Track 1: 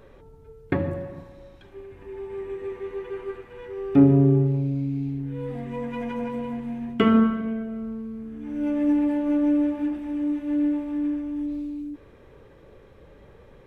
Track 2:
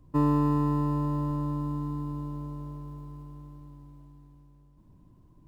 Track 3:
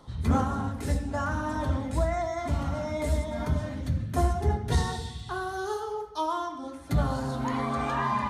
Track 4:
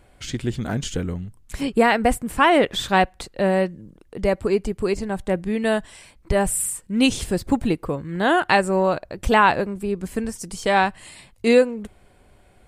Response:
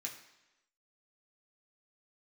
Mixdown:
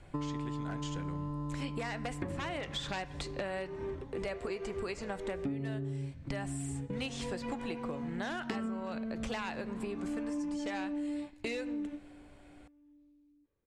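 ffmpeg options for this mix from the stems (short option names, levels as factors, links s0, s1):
-filter_complex "[0:a]bass=f=250:g=2,treble=f=4000:g=5,adelay=1500,volume=0.631[s0];[1:a]volume=0.841[s1];[2:a]adelay=2250,volume=0.112[s2];[3:a]acrossover=split=530|1600|7100[s3][s4][s5][s6];[s3]acompressor=threshold=0.0224:ratio=4[s7];[s4]acompressor=threshold=0.0398:ratio=4[s8];[s5]acompressor=threshold=0.0447:ratio=4[s9];[s6]acompressor=threshold=0.00447:ratio=4[s10];[s7][s8][s9][s10]amix=inputs=4:normalize=0,aeval=exprs='0.133*(abs(mod(val(0)/0.133+3,4)-2)-1)':c=same,volume=0.631,asplit=3[s11][s12][s13];[s12]volume=0.422[s14];[s13]apad=whole_len=668881[s15];[s0][s15]sidechaingate=range=0.0316:threshold=0.00316:ratio=16:detection=peak[s16];[4:a]atrim=start_sample=2205[s17];[s14][s17]afir=irnorm=-1:irlink=0[s18];[s16][s1][s2][s11][s18]amix=inputs=5:normalize=0,lowpass=7100,acompressor=threshold=0.02:ratio=10"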